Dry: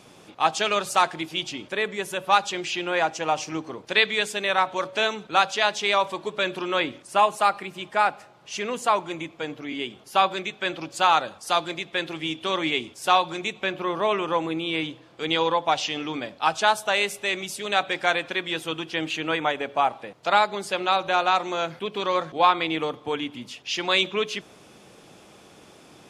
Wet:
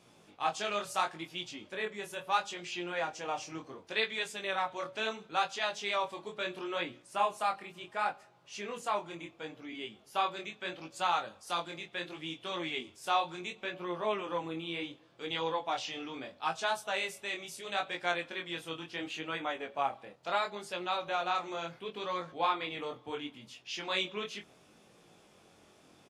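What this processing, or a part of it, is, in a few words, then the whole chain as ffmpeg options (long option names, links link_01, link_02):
double-tracked vocal: -filter_complex "[0:a]asplit=2[link_01][link_02];[link_02]adelay=23,volume=-11dB[link_03];[link_01][link_03]amix=inputs=2:normalize=0,flanger=delay=17:depth=7.6:speed=0.72,volume=-8.5dB"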